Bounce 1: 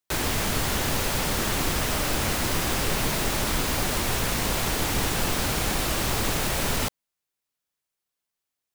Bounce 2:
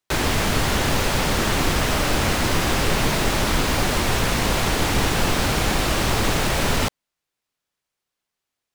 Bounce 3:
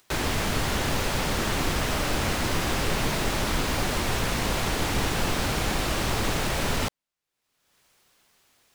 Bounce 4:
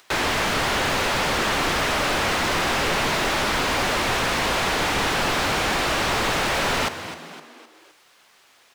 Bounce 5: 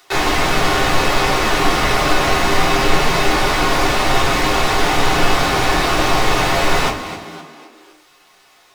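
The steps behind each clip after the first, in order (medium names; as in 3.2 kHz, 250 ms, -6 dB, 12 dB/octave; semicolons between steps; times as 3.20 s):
treble shelf 8.3 kHz -10.5 dB; trim +6 dB
upward compressor, threshold -38 dBFS; trim -5.5 dB
frequency-shifting echo 257 ms, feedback 45%, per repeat +76 Hz, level -15.5 dB; overdrive pedal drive 18 dB, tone 3.2 kHz, clips at -12.5 dBFS
simulated room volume 150 m³, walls furnished, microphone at 3.4 m; trim -2 dB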